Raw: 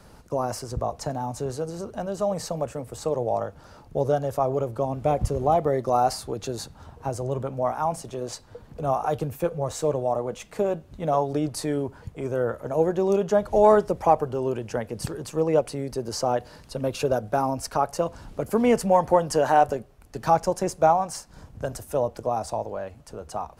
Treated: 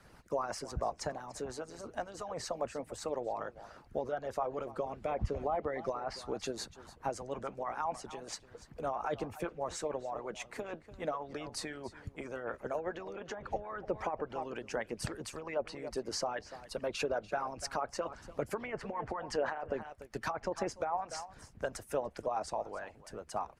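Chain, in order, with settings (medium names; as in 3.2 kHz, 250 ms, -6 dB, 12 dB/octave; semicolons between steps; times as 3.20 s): delay 291 ms -16.5 dB; low-pass that closes with the level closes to 2 kHz, closed at -15.5 dBFS; peaking EQ 1.9 kHz +7.5 dB 1.3 oct; peak limiter -15.5 dBFS, peak gain reduction 10.5 dB; harmonic-percussive split harmonic -18 dB; trim -5.5 dB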